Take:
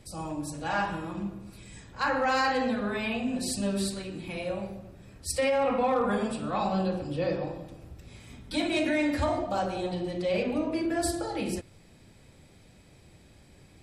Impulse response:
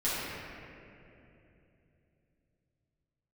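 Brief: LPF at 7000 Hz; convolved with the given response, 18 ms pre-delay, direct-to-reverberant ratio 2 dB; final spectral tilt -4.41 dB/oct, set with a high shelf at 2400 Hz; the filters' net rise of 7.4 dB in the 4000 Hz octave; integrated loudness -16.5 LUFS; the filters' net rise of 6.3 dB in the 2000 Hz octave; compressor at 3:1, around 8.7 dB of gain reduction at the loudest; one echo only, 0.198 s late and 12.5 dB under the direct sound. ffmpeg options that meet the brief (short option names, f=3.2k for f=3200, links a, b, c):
-filter_complex "[0:a]lowpass=7k,equalizer=f=2k:t=o:g=5,highshelf=f=2.4k:g=4,equalizer=f=4k:t=o:g=4.5,acompressor=threshold=-32dB:ratio=3,aecho=1:1:198:0.237,asplit=2[a][b];[1:a]atrim=start_sample=2205,adelay=18[c];[b][c]afir=irnorm=-1:irlink=0,volume=-12dB[d];[a][d]amix=inputs=2:normalize=0,volume=15.5dB"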